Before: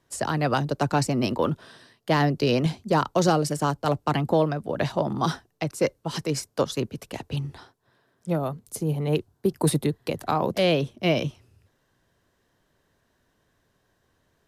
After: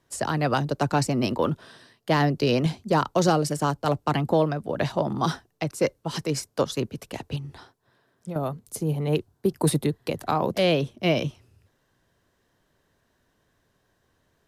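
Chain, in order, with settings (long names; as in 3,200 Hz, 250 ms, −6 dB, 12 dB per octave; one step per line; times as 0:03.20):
0:07.36–0:08.36: downward compressor 5 to 1, threshold −32 dBFS, peak gain reduction 11 dB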